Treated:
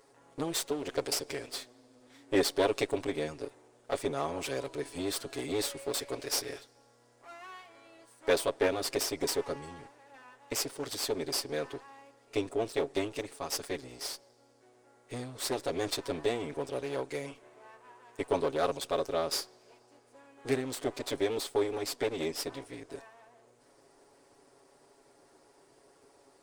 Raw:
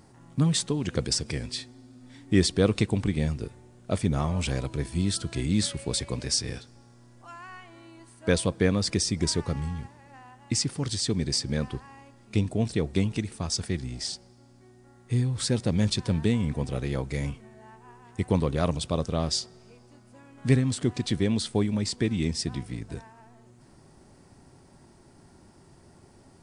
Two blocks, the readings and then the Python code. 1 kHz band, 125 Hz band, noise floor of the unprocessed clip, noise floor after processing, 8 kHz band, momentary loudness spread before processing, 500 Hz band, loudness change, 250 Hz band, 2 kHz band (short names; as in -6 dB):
+1.0 dB, -20.0 dB, -55 dBFS, -64 dBFS, -5.5 dB, 14 LU, 0.0 dB, -6.0 dB, -10.5 dB, -2.5 dB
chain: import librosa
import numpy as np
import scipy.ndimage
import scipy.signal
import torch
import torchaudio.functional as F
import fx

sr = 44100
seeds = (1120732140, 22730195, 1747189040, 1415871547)

y = fx.lower_of_two(x, sr, delay_ms=7.2)
y = fx.low_shelf_res(y, sr, hz=260.0, db=-13.5, q=1.5)
y = y * librosa.db_to_amplitude(-3.5)